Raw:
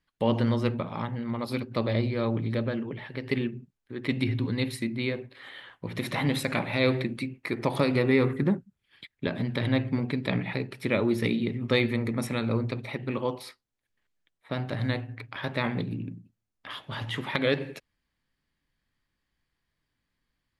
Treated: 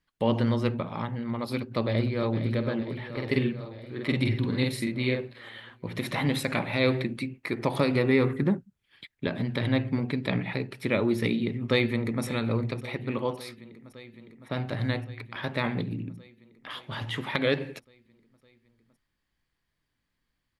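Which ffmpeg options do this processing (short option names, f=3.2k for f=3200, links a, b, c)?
-filter_complex "[0:a]asplit=2[a][b];[b]afade=t=in:st=1.51:d=0.01,afade=t=out:st=2.35:d=0.01,aecho=0:1:460|920|1380|1840|2300|2760|3220|3680|4140|4600:0.316228|0.221359|0.154952|0.108466|0.0759263|0.0531484|0.0372039|0.0260427|0.0182299|0.0127609[c];[a][c]amix=inputs=2:normalize=0,asettb=1/sr,asplit=3[d][e][f];[d]atrim=end=3.124[g];[e]atrim=start=3.12:end=5.39,asetpts=PTS-STARTPTS,afade=t=in:d=0.004:c=qsin,afade=t=out:st=2.266:d=0.004:c=qsin,asplit=2[h][i];[i]adelay=47,volume=-2.5dB[j];[h][j]amix=inputs=2:normalize=0,atrim=end_sample=100107[k];[f]atrim=start=5.386[l];[g][k]acrossfade=d=0.004:c1=hsin:c2=qsin[m];[m][l]acrossfade=d=0.004:c1=qsin:c2=hsin,asplit=2[n][o];[o]afade=t=in:st=11.33:d=0.01,afade=t=out:st=12.24:d=0.01,aecho=0:1:560|1120|1680|2240|2800|3360|3920|4480|5040|5600|6160|6720:0.141254|0.113003|0.0904024|0.0723219|0.0578575|0.046286|0.0370288|0.0296231|0.0236984|0.0189588|0.015167|0.0121336[p];[n][p]amix=inputs=2:normalize=0"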